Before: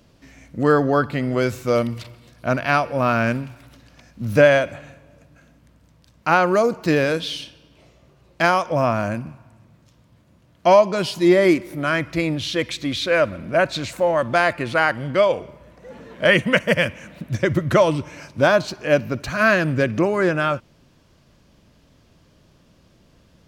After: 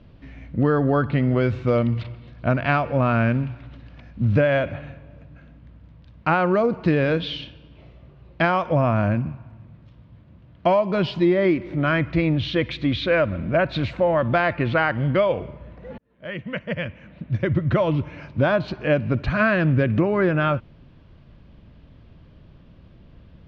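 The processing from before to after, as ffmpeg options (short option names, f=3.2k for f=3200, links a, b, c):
-filter_complex "[0:a]asplit=2[a][b];[a]atrim=end=15.98,asetpts=PTS-STARTPTS,afade=t=out:st=15.976:d=0.004:c=hsin[c];[b]atrim=start=15.98,asetpts=PTS-STARTPTS,afade=t=in:d=2.82[d];[c][d]concat=n=2:v=0:a=1,lowpass=f=3.6k:w=0.5412,lowpass=f=3.6k:w=1.3066,lowshelf=f=180:g=11.5,acompressor=threshold=-15dB:ratio=6"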